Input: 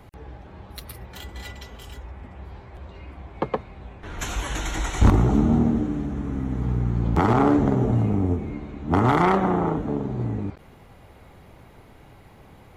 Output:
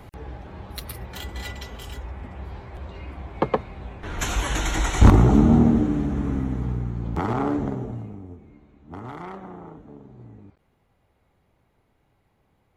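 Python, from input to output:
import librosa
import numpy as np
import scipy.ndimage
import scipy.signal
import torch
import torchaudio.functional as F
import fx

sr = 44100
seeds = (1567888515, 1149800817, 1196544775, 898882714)

y = fx.gain(x, sr, db=fx.line((6.3, 3.5), (6.95, -6.0), (7.65, -6.0), (8.24, -18.0)))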